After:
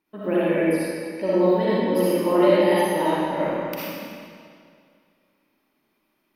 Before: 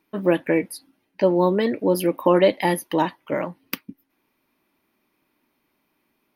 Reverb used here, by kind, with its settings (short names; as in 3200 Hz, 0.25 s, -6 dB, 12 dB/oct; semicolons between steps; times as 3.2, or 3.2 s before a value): digital reverb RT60 2.2 s, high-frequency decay 0.9×, pre-delay 20 ms, DRR -9.5 dB; gain -9.5 dB